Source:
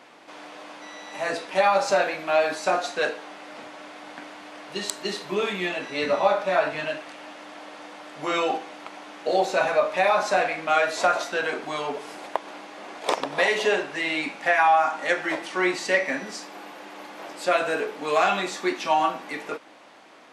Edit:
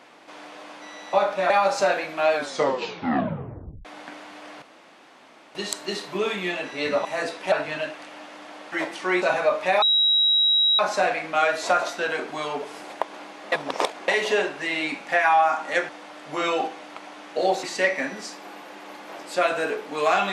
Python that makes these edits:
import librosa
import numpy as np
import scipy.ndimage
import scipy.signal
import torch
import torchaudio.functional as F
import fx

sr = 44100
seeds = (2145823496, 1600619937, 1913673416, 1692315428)

y = fx.edit(x, sr, fx.swap(start_s=1.13, length_s=0.47, other_s=6.22, other_length_s=0.37),
    fx.tape_stop(start_s=2.43, length_s=1.52),
    fx.insert_room_tone(at_s=4.72, length_s=0.93),
    fx.swap(start_s=7.79, length_s=1.74, other_s=15.23, other_length_s=0.5),
    fx.insert_tone(at_s=10.13, length_s=0.97, hz=3850.0, db=-16.0),
    fx.reverse_span(start_s=12.86, length_s=0.56), tone=tone)